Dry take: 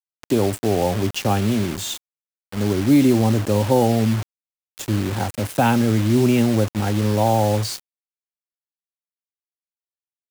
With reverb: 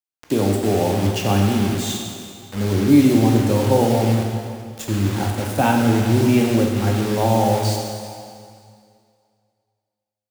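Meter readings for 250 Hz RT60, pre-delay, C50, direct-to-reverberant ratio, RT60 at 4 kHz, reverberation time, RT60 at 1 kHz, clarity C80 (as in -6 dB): 2.2 s, 10 ms, 2.5 dB, 0.5 dB, 2.1 s, 2.3 s, 2.3 s, 3.5 dB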